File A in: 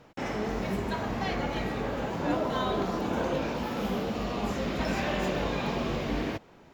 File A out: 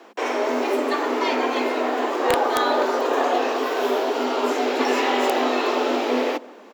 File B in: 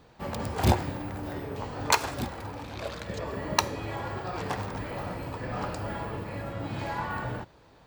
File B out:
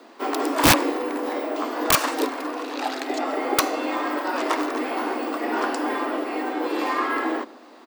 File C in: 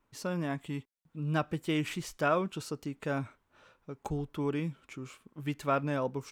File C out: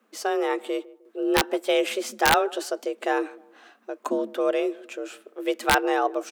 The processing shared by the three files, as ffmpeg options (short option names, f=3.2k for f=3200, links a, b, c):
-filter_complex "[0:a]asplit=2[a][b];[b]adelay=154,lowpass=f=890:p=1,volume=-20dB,asplit=2[c][d];[d]adelay=154,lowpass=f=890:p=1,volume=0.37,asplit=2[e][f];[f]adelay=154,lowpass=f=890:p=1,volume=0.37[g];[a][c][e][g]amix=inputs=4:normalize=0,afreqshift=200,aeval=exprs='(mod(7.08*val(0)+1,2)-1)/7.08':c=same,volume=8.5dB"